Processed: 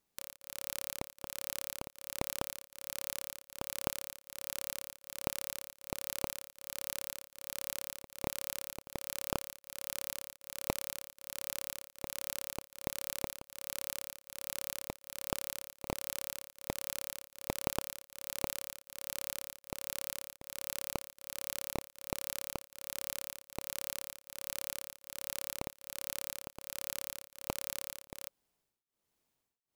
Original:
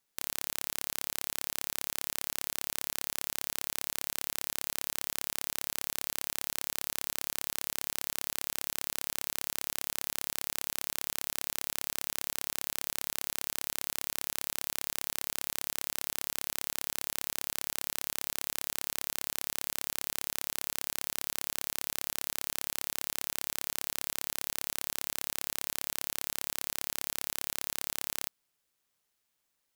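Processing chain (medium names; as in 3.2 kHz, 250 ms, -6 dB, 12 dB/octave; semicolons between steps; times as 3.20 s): band-stop 550 Hz, Q 12; in parallel at -5.5 dB: sample-rate reducer 1.8 kHz, jitter 20%; on the sum: tremolo of two beating tones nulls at 1.3 Hz; trim -3.5 dB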